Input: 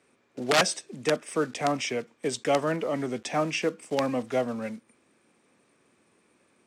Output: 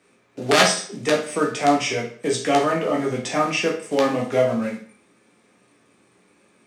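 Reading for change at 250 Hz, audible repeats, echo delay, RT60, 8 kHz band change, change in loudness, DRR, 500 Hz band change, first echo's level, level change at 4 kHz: +7.0 dB, none, none, 0.50 s, +6.5 dB, +7.0 dB, -2.0 dB, +6.5 dB, none, +7.0 dB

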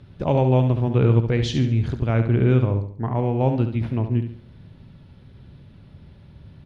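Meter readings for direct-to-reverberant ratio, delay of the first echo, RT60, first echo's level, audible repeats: none, 70 ms, none, -8.5 dB, 4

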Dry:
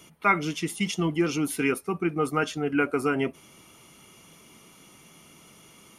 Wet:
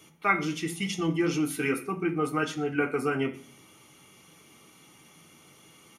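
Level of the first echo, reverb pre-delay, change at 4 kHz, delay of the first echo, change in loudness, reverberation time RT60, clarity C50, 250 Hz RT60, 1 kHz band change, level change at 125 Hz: -23.5 dB, 3 ms, -2.0 dB, 0.12 s, -2.0 dB, 0.45 s, 13.5 dB, 0.65 s, -3.0 dB, -2.0 dB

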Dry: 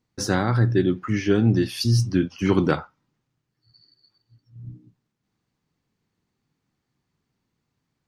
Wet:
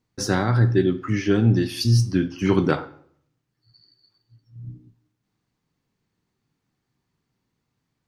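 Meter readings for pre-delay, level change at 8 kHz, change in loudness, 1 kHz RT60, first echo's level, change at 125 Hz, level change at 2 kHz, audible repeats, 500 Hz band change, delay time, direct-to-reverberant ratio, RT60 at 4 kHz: 4 ms, +0.5 dB, +1.0 dB, 0.60 s, none, +1.5 dB, +0.5 dB, none, +0.5 dB, none, 10.0 dB, 0.45 s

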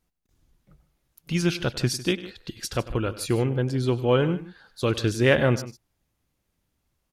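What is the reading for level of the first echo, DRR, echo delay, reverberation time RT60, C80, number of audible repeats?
-17.0 dB, none, 98 ms, none, none, 2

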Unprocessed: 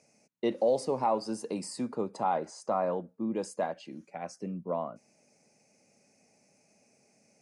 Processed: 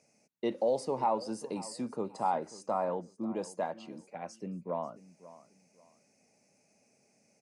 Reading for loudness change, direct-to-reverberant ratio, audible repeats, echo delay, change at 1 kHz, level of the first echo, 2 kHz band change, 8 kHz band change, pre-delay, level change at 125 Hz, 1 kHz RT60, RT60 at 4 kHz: -2.5 dB, none, 2, 0.539 s, -1.0 dB, -17.5 dB, -3.0 dB, -3.0 dB, none, -3.0 dB, none, none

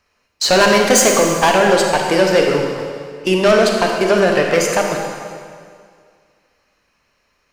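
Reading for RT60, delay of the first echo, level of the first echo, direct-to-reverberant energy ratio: 2.1 s, none, none, 1.0 dB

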